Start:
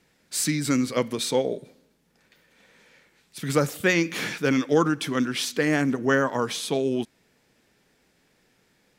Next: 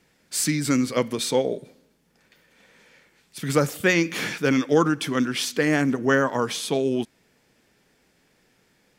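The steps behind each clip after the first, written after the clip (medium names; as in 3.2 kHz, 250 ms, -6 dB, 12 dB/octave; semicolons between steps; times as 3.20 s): band-stop 3.9 kHz, Q 26; trim +1.5 dB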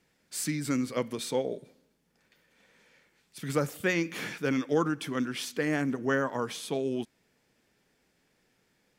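dynamic bell 5.1 kHz, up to -3 dB, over -38 dBFS, Q 0.76; trim -7.5 dB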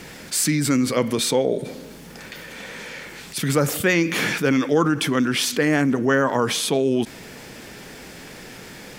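level flattener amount 50%; trim +7 dB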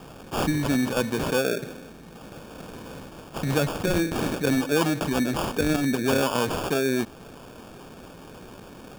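sample-and-hold 22×; trim -4 dB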